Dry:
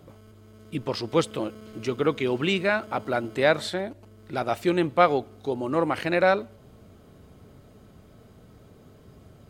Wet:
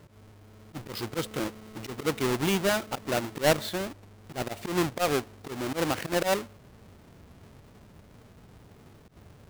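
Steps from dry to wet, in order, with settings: square wave that keeps the level; slow attack 102 ms; trim -6 dB

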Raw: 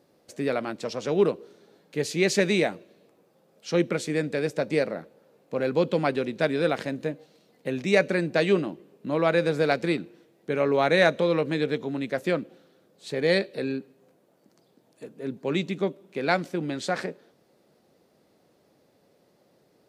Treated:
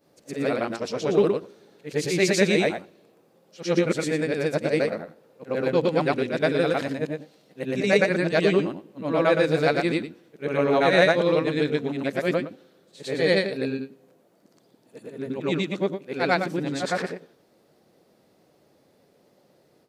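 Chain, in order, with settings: short-time spectra conjugated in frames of 241 ms; trim +5.5 dB

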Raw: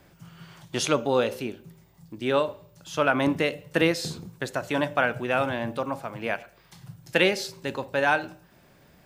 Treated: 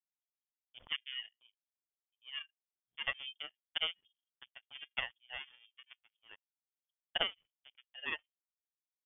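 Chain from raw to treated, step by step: spectral contrast enhancement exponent 2.2; power-law waveshaper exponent 3; frequency inversion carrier 3.4 kHz; trim -3.5 dB

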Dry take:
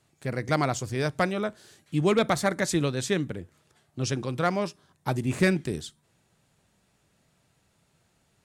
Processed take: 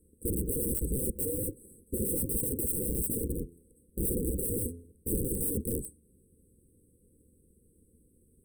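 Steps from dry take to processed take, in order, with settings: cycle switcher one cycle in 2, inverted; 3.30–5.24 s: de-hum 85.23 Hz, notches 5; integer overflow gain 28 dB; brick-wall FIR band-stop 530–7900 Hz; trim +6 dB

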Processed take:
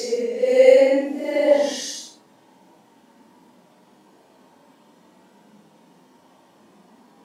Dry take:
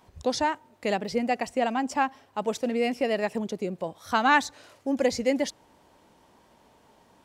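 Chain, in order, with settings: Paulstretch 5.9×, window 0.10 s, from 5.17 s; high-pass sweep 440 Hz -> 200 Hz, 1.50–2.25 s; trim +3.5 dB

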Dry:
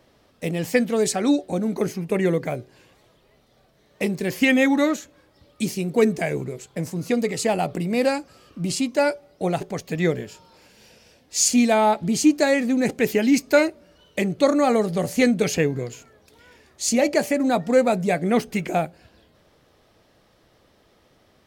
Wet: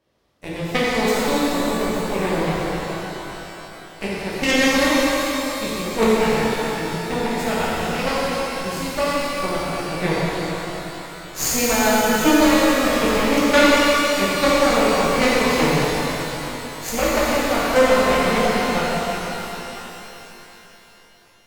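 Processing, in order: Chebyshev shaper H 3 -11 dB, 6 -23 dB, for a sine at -4.5 dBFS; pitch-shifted reverb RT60 3.6 s, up +12 st, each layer -8 dB, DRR -8.5 dB; trim +1.5 dB

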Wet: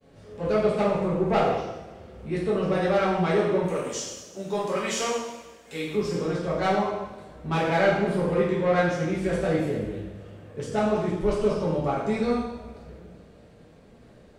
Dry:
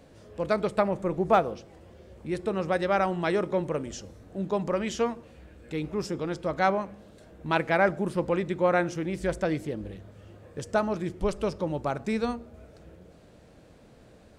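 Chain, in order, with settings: 3.64–5.95 s: RIAA curve recording; expander -50 dBFS; treble shelf 6.3 kHz -5.5 dB; saturation -18.5 dBFS, distortion -15 dB; two-slope reverb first 0.99 s, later 3.3 s, from -24 dB, DRR -8.5 dB; trim -4.5 dB

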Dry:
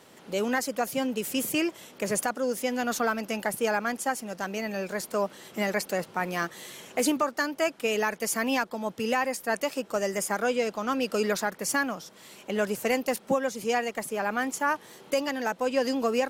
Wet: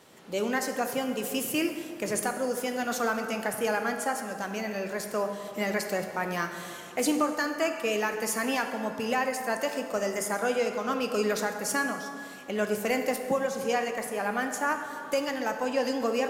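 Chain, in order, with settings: plate-style reverb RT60 2.2 s, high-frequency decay 0.55×, DRR 5 dB; trim -2 dB

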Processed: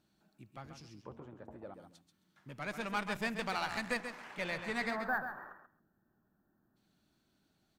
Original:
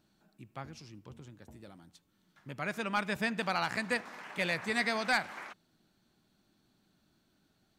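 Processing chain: Chebyshev shaper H 4 -18 dB, 6 -31 dB, 8 -28 dB, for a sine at -19 dBFS; 4.35–4.95 s: treble shelf 3.9 kHz -7.5 dB; 4.90–6.76 s: time-frequency box 1.9–12 kHz -28 dB; 1.03–1.74 s: FFT filter 150 Hz 0 dB, 570 Hz +12 dB, 1.1 kHz +10 dB, 5.8 kHz -16 dB; on a send: feedback delay 135 ms, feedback 15%, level -8.5 dB; on the sum: trim -4 dB

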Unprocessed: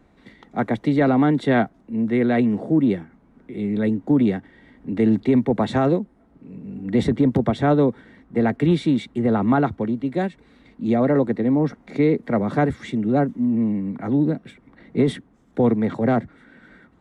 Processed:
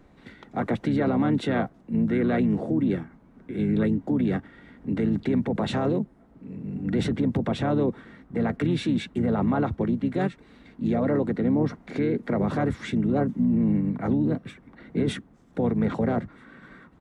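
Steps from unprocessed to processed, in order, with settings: peak limiter -17.5 dBFS, peak gain reduction 9 dB; harmony voices -5 st -6 dB

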